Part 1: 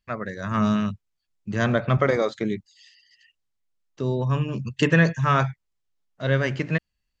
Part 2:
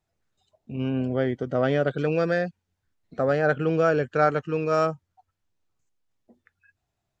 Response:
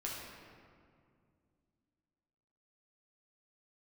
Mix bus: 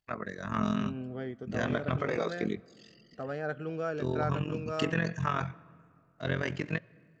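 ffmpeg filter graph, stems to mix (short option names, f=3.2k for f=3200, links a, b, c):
-filter_complex "[0:a]tremolo=f=44:d=0.889,highpass=f=130:p=1,volume=-2.5dB,asplit=2[a][b];[b]volume=-23.5dB[c];[1:a]volume=-13dB,asplit=2[d][e];[e]volume=-20.5dB[f];[2:a]atrim=start_sample=2205[g];[c][f]amix=inputs=2:normalize=0[h];[h][g]afir=irnorm=-1:irlink=0[i];[a][d][i]amix=inputs=3:normalize=0,bandreject=f=540:w=12,alimiter=limit=-17.5dB:level=0:latency=1:release=95"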